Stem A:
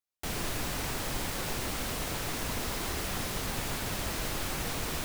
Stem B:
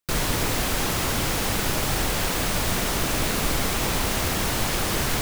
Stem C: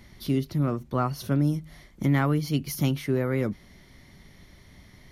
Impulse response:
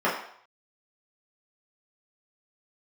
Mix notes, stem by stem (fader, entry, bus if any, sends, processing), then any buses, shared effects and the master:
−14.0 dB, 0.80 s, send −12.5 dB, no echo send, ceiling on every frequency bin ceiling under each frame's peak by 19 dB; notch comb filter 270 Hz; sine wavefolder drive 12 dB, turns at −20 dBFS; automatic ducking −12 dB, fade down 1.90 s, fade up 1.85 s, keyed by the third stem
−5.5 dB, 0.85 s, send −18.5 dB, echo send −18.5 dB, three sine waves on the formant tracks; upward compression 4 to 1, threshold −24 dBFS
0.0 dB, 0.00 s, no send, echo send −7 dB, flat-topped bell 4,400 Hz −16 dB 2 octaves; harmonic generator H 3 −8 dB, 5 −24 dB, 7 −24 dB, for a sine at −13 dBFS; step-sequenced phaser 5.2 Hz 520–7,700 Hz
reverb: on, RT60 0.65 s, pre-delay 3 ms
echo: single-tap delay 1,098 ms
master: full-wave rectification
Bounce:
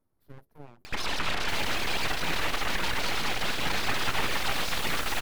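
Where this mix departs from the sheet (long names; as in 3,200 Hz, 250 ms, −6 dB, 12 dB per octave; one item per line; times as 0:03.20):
stem A: entry 0.80 s → 1.25 s
stem C 0.0 dB → −10.5 dB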